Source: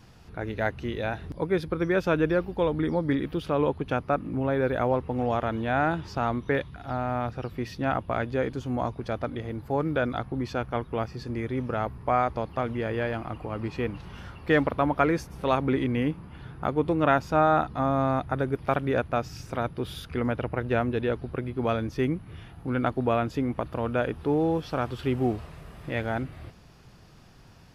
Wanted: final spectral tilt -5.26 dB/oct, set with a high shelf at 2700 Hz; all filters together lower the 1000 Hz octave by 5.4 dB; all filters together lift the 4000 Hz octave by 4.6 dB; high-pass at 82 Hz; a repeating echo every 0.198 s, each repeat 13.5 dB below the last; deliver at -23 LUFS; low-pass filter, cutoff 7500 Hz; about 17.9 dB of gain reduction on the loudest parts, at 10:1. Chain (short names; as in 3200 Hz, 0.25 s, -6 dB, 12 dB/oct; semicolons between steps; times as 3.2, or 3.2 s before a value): HPF 82 Hz; LPF 7500 Hz; bell 1000 Hz -9 dB; high shelf 2700 Hz +4 dB; bell 4000 Hz +3.5 dB; compressor 10:1, threshold -38 dBFS; feedback echo 0.198 s, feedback 21%, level -13.5 dB; gain +20 dB